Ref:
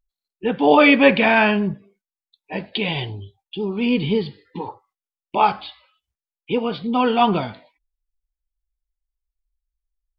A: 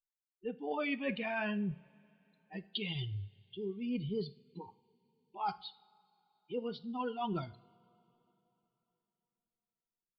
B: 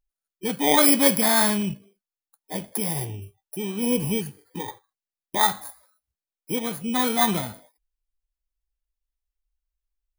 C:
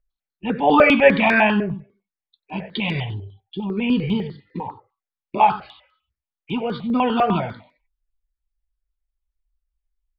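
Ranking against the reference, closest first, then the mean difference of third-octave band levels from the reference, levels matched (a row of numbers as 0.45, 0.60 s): C, A, B; 3.5, 5.5, 10.5 dB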